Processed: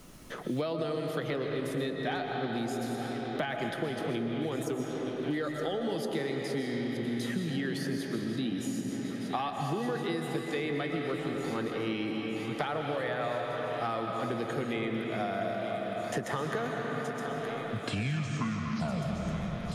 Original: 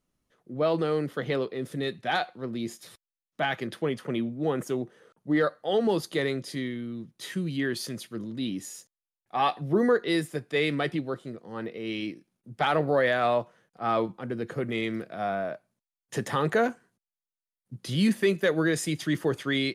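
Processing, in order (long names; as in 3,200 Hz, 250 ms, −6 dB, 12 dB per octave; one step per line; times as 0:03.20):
turntable brake at the end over 2.24 s
downward compressor, threshold −28 dBFS, peak gain reduction 9.5 dB
on a send: feedback echo with a high-pass in the loop 919 ms, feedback 78%, high-pass 190 Hz, level −17 dB
on the sum: comb and all-pass reverb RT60 3.4 s, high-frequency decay 0.5×, pre-delay 85 ms, DRR 2 dB
multiband upward and downward compressor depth 100%
level −2.5 dB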